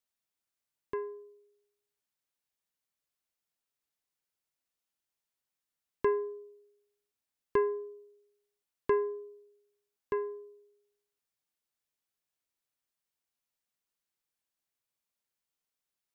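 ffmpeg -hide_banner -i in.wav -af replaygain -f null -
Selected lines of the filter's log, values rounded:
track_gain = +20.1 dB
track_peak = 0.111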